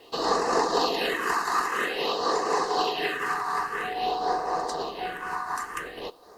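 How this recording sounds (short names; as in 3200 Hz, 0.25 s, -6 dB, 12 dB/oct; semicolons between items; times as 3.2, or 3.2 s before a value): tremolo triangle 4 Hz, depth 50%; phasing stages 4, 0.5 Hz, lowest notch 510–3100 Hz; a quantiser's noise floor 12-bit, dither triangular; Opus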